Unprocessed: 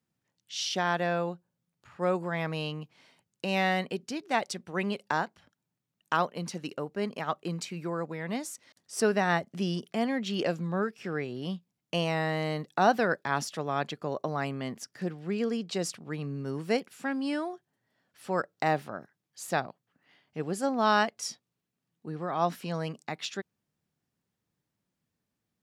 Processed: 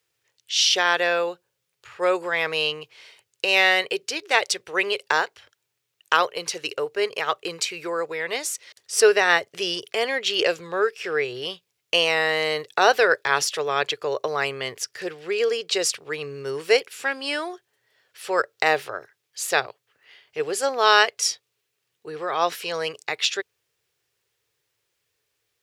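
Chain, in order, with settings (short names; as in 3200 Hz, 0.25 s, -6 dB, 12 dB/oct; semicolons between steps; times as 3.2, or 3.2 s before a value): EQ curve 120 Hz 0 dB, 210 Hz -20 dB, 430 Hz +12 dB, 680 Hz +3 dB, 2600 Hz +15 dB, 8800 Hz +12 dB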